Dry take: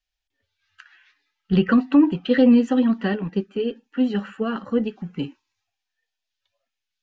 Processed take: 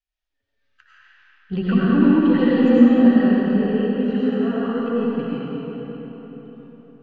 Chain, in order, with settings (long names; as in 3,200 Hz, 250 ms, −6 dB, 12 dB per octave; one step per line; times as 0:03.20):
high-shelf EQ 4,100 Hz −9.5 dB
comb and all-pass reverb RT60 4.5 s, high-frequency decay 0.65×, pre-delay 60 ms, DRR −9.5 dB
level −7 dB